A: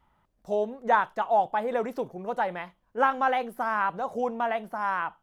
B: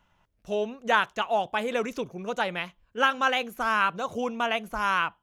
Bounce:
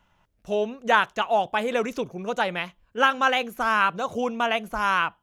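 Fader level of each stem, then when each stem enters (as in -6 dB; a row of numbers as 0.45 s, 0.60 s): -14.5 dB, +2.0 dB; 0.00 s, 0.00 s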